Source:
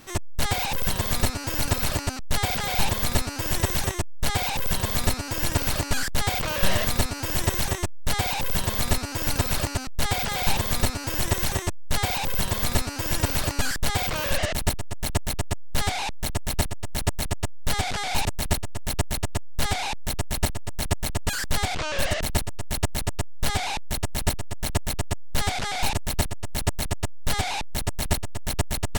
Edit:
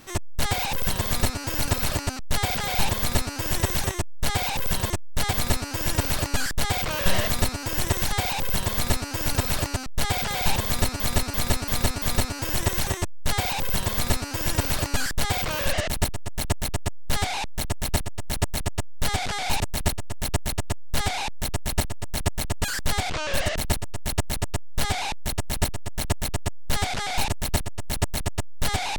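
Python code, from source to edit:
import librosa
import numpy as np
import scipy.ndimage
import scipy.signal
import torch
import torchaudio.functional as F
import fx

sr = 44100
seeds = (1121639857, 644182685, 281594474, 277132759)

y = fx.edit(x, sr, fx.duplicate(start_s=3.96, length_s=0.43, to_s=4.9),
    fx.cut(start_s=7.68, length_s=0.44),
    fx.repeat(start_s=10.67, length_s=0.34, count=5), tone=tone)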